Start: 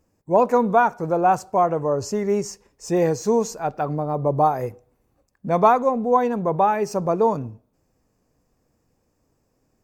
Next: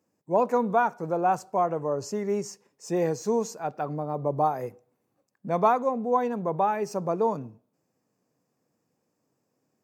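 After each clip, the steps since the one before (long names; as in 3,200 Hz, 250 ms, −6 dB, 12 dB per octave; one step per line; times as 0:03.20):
high-pass filter 130 Hz 24 dB per octave
level −6 dB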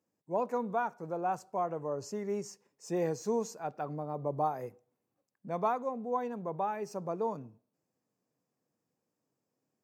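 speech leveller 2 s
level −8.5 dB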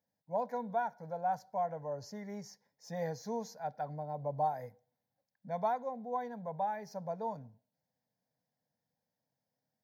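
phaser with its sweep stopped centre 1,800 Hz, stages 8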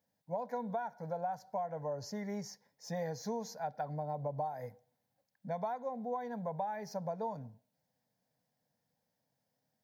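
downward compressor 12 to 1, threshold −38 dBFS, peak gain reduction 11.5 dB
level +4.5 dB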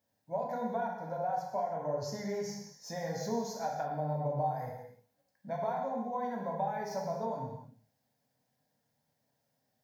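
reverb whose tail is shaped and stops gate 350 ms falling, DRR −2 dB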